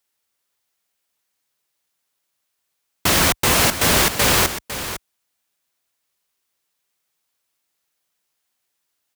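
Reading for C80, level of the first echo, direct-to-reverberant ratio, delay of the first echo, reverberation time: no reverb audible, −11.5 dB, no reverb audible, 504 ms, no reverb audible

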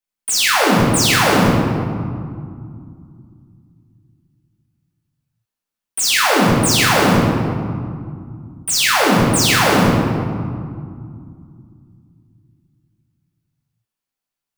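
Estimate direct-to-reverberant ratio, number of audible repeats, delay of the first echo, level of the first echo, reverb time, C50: −7.0 dB, no echo audible, no echo audible, no echo audible, 2.2 s, −1.0 dB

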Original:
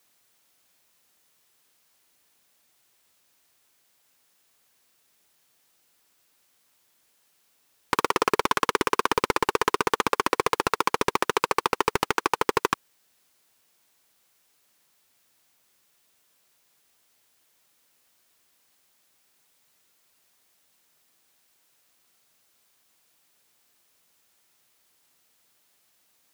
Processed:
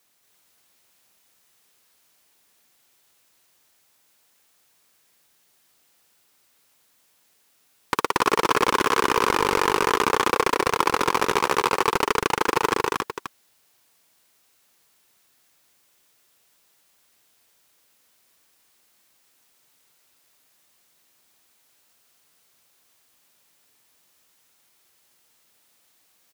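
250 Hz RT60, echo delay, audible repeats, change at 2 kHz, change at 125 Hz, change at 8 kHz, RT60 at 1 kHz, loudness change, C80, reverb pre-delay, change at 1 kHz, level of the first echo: no reverb audible, 229 ms, 3, +3.0 dB, +3.0 dB, +3.5 dB, no reverb audible, +3.0 dB, no reverb audible, no reverb audible, +3.0 dB, −3.0 dB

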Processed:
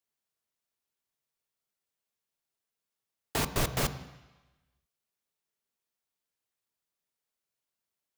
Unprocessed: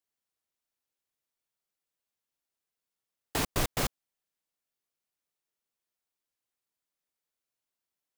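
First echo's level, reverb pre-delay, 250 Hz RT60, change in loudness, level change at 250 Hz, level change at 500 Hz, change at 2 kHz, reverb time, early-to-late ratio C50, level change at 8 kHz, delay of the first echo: no echo audible, 3 ms, 1.0 s, +0.5 dB, +0.5 dB, +1.0 dB, +0.5 dB, 1.1 s, 13.0 dB, 0.0 dB, no echo audible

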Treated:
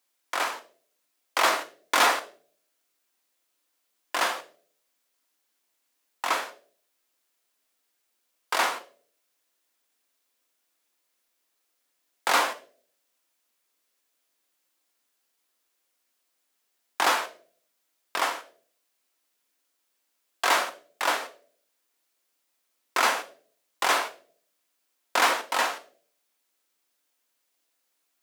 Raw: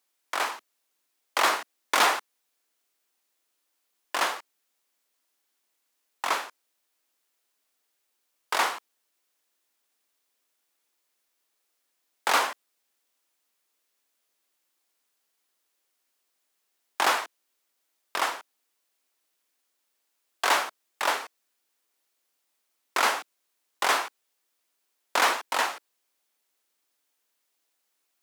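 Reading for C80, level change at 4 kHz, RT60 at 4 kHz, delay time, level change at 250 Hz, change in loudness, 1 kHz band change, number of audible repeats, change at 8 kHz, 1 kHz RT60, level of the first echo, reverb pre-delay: 19.0 dB, +0.5 dB, 0.35 s, no echo audible, +2.0 dB, +0.5 dB, +0.5 dB, no echo audible, +1.0 dB, 0.40 s, no echo audible, 3 ms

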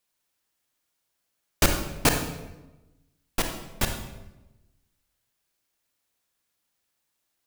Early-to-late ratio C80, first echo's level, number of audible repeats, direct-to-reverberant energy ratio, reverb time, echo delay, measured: 8.5 dB, no echo audible, no echo audible, 4.0 dB, 1.0 s, no echo audible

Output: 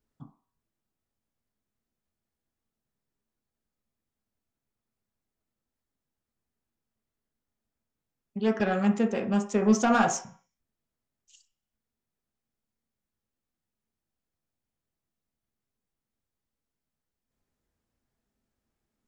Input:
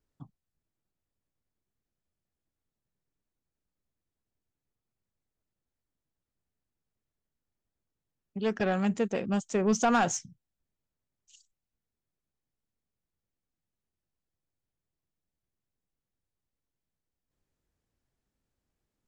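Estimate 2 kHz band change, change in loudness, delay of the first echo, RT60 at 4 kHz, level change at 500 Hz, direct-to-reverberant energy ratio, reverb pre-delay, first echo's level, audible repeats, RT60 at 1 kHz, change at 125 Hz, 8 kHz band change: +2.5 dB, +3.0 dB, no echo audible, 0.55 s, +2.0 dB, 2.5 dB, 3 ms, no echo audible, no echo audible, 0.55 s, +2.0 dB, 0.0 dB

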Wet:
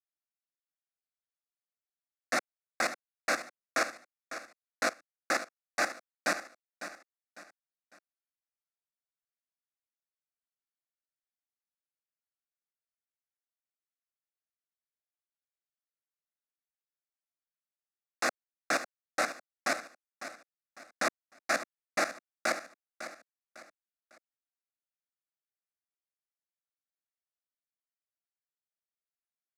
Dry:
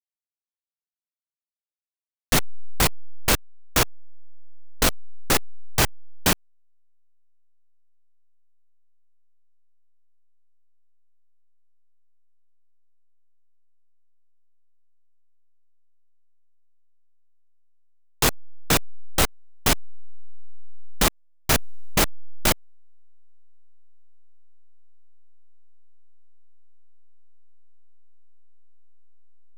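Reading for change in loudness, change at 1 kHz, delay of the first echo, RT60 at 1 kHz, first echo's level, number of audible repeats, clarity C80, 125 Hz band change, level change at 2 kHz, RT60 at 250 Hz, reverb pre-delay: −11.0 dB, −6.0 dB, 552 ms, no reverb audible, −12.0 dB, 3, no reverb audible, −30.0 dB, −4.0 dB, no reverb audible, no reverb audible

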